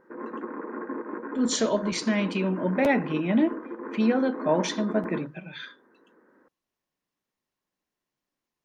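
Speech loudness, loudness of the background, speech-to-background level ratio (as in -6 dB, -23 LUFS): -26.0 LUFS, -36.5 LUFS, 10.5 dB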